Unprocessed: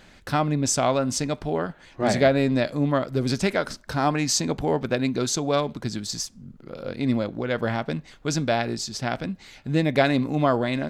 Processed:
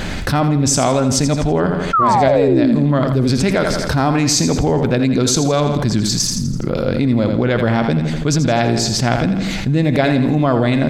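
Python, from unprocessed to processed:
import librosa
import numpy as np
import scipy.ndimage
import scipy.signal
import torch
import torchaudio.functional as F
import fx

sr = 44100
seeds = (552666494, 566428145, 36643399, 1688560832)

p1 = fx.low_shelf(x, sr, hz=270.0, db=7.5)
p2 = fx.level_steps(p1, sr, step_db=14)
p3 = p1 + F.gain(torch.from_numpy(p2), 1.5).numpy()
p4 = fx.spec_paint(p3, sr, seeds[0], shape='fall', start_s=1.93, length_s=0.83, low_hz=210.0, high_hz=1400.0, level_db=-11.0)
p5 = p4 + fx.echo_feedback(p4, sr, ms=83, feedback_pct=45, wet_db=-9.5, dry=0)
p6 = fx.env_flatten(p5, sr, amount_pct=70)
y = F.gain(torch.from_numpy(p6), -6.0).numpy()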